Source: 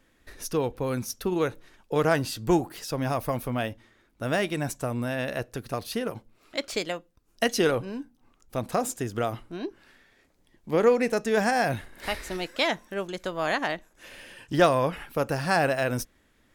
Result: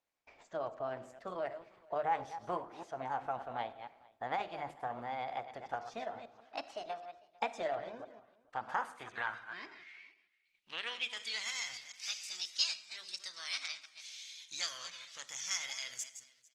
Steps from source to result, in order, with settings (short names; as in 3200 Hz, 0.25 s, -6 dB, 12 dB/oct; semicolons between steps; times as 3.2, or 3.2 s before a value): reverse delay 0.149 s, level -12 dB; notches 50/100/150/200/250/300/350/400 Hz; gate -58 dBFS, range -16 dB; passive tone stack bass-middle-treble 5-5-5; in parallel at +1.5 dB: compressor 16:1, threshold -47 dBFS, peak gain reduction 18 dB; on the sum: band-pass sweep 610 Hz -> 4700 Hz, 8.15–11.93; formant shift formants +4 st; air absorption 66 m; echo 0.45 s -24 dB; reverb, pre-delay 15 ms, DRR 15 dB; gain +10.5 dB; Opus 20 kbps 48000 Hz